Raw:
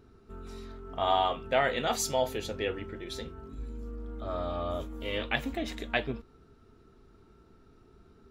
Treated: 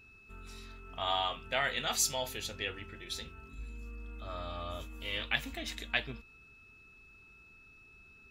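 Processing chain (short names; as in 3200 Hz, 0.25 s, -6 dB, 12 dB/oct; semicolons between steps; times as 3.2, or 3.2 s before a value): whine 2600 Hz -57 dBFS; passive tone stack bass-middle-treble 5-5-5; gain +9 dB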